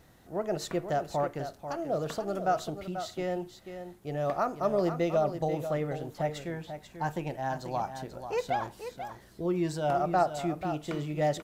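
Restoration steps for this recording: de-click; expander -43 dBFS, range -21 dB; inverse comb 0.489 s -9.5 dB

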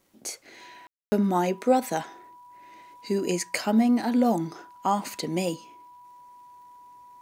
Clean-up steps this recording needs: de-click; notch 980 Hz, Q 30; room tone fill 0.87–1.12

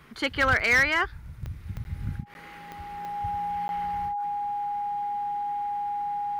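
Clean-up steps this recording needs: clip repair -15.5 dBFS; de-click; notch 820 Hz, Q 30; interpolate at 1.84/2.34/3.68, 11 ms

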